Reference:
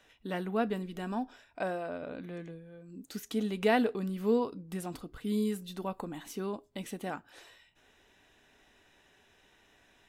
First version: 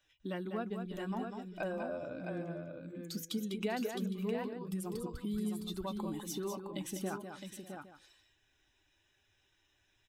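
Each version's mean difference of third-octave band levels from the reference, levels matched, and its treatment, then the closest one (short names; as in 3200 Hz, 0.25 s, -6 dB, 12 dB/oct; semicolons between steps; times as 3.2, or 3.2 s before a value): 7.0 dB: per-bin expansion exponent 1.5; compressor 4:1, threshold -44 dBFS, peak gain reduction 17 dB; on a send: tapped delay 0.199/0.595/0.662/0.81 s -7/-17/-6/-17 dB; on the sum: gain +6.5 dB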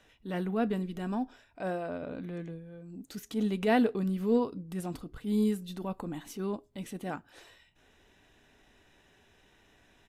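2.5 dB: low shelf 300 Hz +7 dB; transient shaper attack -7 dB, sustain -2 dB; downsampling 32000 Hz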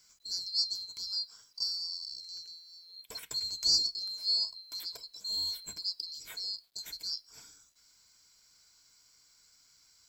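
16.0 dB: band-swap scrambler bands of 4000 Hz; ripple EQ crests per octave 1.7, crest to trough 9 dB; bit-crush 12-bit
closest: second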